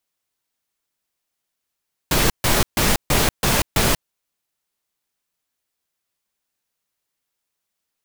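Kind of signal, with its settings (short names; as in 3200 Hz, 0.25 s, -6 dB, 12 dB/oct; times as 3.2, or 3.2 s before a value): noise bursts pink, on 0.19 s, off 0.14 s, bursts 6, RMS -17 dBFS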